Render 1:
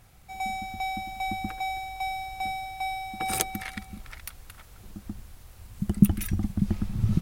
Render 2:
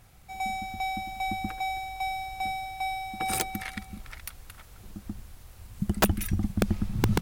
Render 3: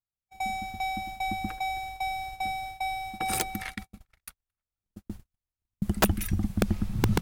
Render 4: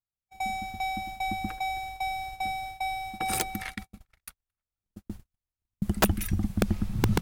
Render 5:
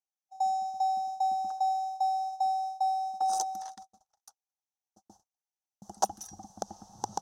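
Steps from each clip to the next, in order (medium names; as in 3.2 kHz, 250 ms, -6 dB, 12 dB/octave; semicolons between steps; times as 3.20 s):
integer overflow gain 13 dB
gate -37 dBFS, range -46 dB
no audible change
two resonant band-passes 2.2 kHz, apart 2.9 oct; trim +6.5 dB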